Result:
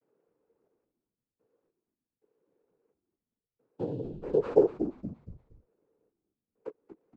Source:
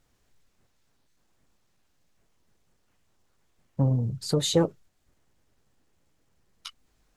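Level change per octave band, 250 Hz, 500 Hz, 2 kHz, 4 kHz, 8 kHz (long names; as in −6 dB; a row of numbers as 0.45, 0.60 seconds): −4.0 dB, +3.0 dB, can't be measured, below −30 dB, below −35 dB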